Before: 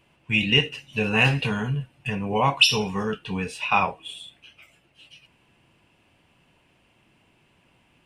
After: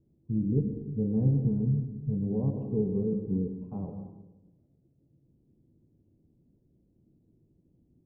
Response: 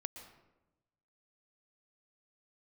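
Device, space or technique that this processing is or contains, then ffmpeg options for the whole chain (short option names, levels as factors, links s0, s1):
next room: -filter_complex "[0:a]lowpass=f=370:w=0.5412,lowpass=f=370:w=1.3066[s0];[1:a]atrim=start_sample=2205[s1];[s0][s1]afir=irnorm=-1:irlink=0,asettb=1/sr,asplit=3[s2][s3][s4];[s2]atrim=end=2.544[s5];[s3]atrim=start=2.54:end=3.54,asetpts=PTS-STARTPTS,afade=t=in:d=0.004:c=qsin,afade=t=out:st=0.996:d=0.004:c=qsin,equalizer=f=390:t=o:w=0.95:g=5.5[s6];[s4]atrim=start=3.536[s7];[s5][s6]acrossfade=d=0.004:c1=hsin:c2=qsin[s8];[s8][s7]acrossfade=d=0.004:c1=qsin:c2=hsin,volume=1.26"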